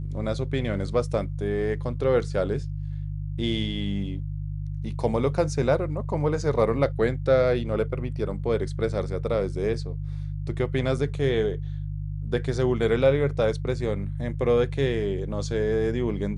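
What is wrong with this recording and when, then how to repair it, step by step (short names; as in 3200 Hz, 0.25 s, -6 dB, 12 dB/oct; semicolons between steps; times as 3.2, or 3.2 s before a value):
hum 50 Hz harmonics 3 -31 dBFS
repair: de-hum 50 Hz, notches 3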